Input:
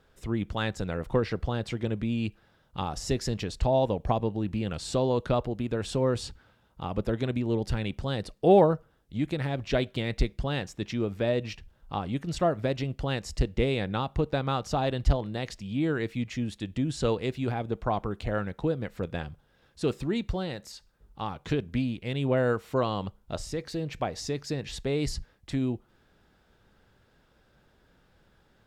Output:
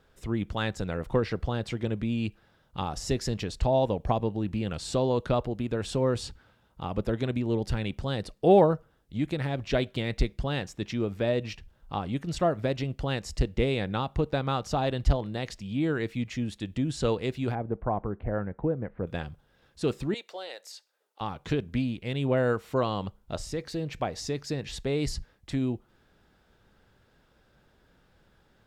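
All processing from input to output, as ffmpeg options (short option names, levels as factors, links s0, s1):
-filter_complex "[0:a]asettb=1/sr,asplit=3[s0][s1][s2];[s0]atrim=end=17.554[s3];[s1]atrim=start=17.55:end=19.07,asetpts=PTS-STARTPTS,afade=t=in:d=0.004:c=qsin,afade=t=out:st=1.516:d=0.004:c=qsin,lowpass=f=1700:w=0.5412,lowpass=f=1700:w=1.3066,equalizer=f=1300:t=o:w=0.67:g=-5[s4];[s2]atrim=start=19.066[s5];[s3][s4]acrossfade=d=0.004:c1=hsin:c2=qsin[s6];[s6][s5]acrossfade=d=0.004:c1=qsin:c2=hsin,asettb=1/sr,asplit=3[s7][s8][s9];[s7]atrim=end=20.144[s10];[s8]atrim=start=20.14:end=21.21,asetpts=PTS-STARTPTS,afade=t=in:d=0.004:c=qsin,afade=t=out:st=1.066:d=0.004:c=qsin,highpass=f=500:w=0.5412,highpass=f=500:w=1.3066,equalizer=f=1100:w=1.1:g=-5.5[s11];[s9]atrim=start=21.206[s12];[s10][s11]acrossfade=d=0.004:c1=hsin:c2=qsin[s13];[s13][s12]acrossfade=d=0.004:c1=qsin:c2=hsin"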